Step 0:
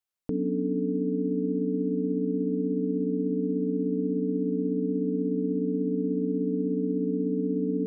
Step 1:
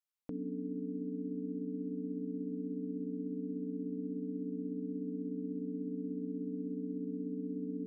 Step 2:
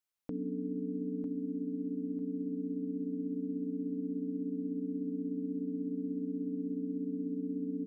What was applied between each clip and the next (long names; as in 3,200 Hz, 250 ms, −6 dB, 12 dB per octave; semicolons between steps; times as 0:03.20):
low-shelf EQ 240 Hz −9.5 dB; notch filter 430 Hz, Q 12; level −6.5 dB
repeating echo 949 ms, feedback 33%, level −10 dB; level +2.5 dB